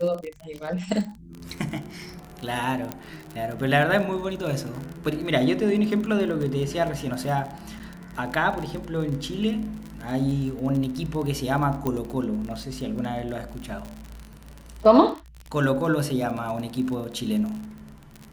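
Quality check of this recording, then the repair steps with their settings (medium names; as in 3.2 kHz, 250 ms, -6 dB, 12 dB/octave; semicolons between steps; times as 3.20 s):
crackle 42 per s -30 dBFS
2.92 s: pop -14 dBFS
7.79–7.80 s: dropout 8.6 ms
11.87 s: pop -13 dBFS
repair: de-click; interpolate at 7.79 s, 8.6 ms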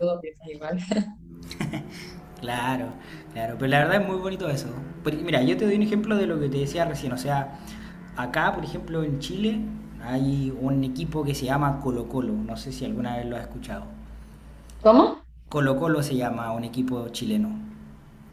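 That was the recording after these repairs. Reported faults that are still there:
2.92 s: pop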